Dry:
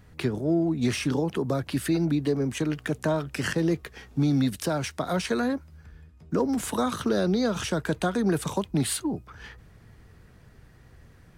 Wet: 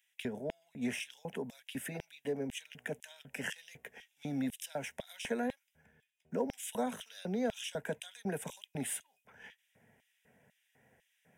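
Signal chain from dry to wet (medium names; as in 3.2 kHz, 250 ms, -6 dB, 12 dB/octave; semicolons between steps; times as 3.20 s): LFO high-pass square 2 Hz 270–3400 Hz; static phaser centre 1.2 kHz, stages 6; trim -6 dB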